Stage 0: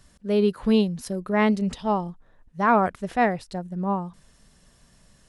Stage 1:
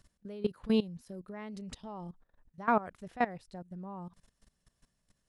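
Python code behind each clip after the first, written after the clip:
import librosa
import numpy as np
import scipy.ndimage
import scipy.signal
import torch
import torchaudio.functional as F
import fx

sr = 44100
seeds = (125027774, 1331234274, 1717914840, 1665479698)

y = fx.level_steps(x, sr, step_db=18)
y = y * librosa.db_to_amplitude(-6.5)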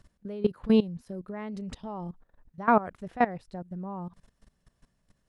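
y = fx.high_shelf(x, sr, hz=2900.0, db=-9.0)
y = y * librosa.db_to_amplitude(6.5)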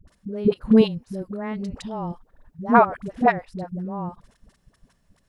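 y = fx.dispersion(x, sr, late='highs', ms=77.0, hz=460.0)
y = y * librosa.db_to_amplitude(7.0)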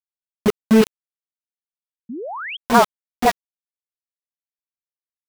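y = np.where(np.abs(x) >= 10.0 ** (-17.5 / 20.0), x, 0.0)
y = fx.spec_paint(y, sr, seeds[0], shape='rise', start_s=2.09, length_s=0.48, low_hz=210.0, high_hz=3400.0, level_db=-31.0)
y = y * librosa.db_to_amplitude(1.5)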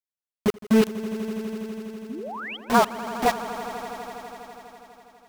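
y = fx.echo_swell(x, sr, ms=82, loudest=5, wet_db=-17.0)
y = y * librosa.db_to_amplitude(-5.0)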